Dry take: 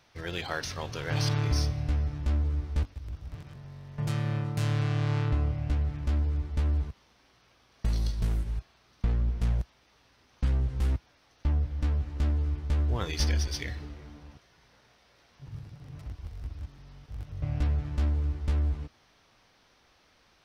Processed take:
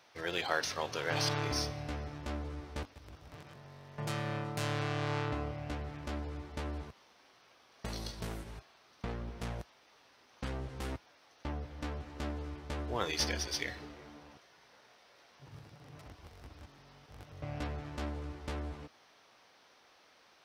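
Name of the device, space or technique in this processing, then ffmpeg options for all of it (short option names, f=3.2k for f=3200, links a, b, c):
filter by subtraction: -filter_complex "[0:a]asplit=2[a][b];[b]lowpass=580,volume=-1[c];[a][c]amix=inputs=2:normalize=0"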